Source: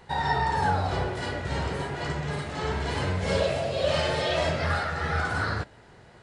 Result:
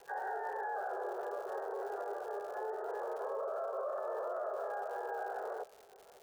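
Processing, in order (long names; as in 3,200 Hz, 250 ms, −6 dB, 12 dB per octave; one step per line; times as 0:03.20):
Chebyshev band-pass filter 390–830 Hz, order 4
pitch-shifted copies added +12 semitones −9 dB
surface crackle 260 per second −45 dBFS
brickwall limiter −29.5 dBFS, peak gain reduction 14.5 dB
level −1.5 dB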